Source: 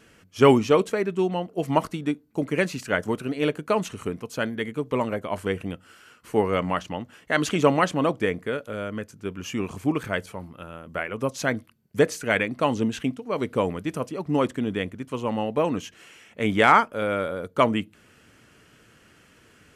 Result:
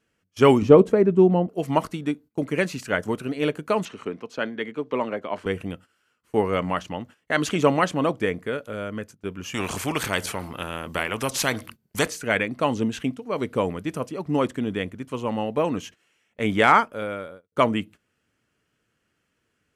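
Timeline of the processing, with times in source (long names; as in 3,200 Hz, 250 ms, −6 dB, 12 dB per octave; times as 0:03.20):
0:00.62–0:01.49: tilt shelving filter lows +10 dB, about 1,100 Hz
0:03.85–0:05.46: three-way crossover with the lows and the highs turned down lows −16 dB, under 190 Hz, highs −20 dB, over 5,600 Hz
0:09.54–0:12.08: every bin compressed towards the loudest bin 2 to 1
0:16.78–0:17.52: fade out
whole clip: noise gate −42 dBFS, range −18 dB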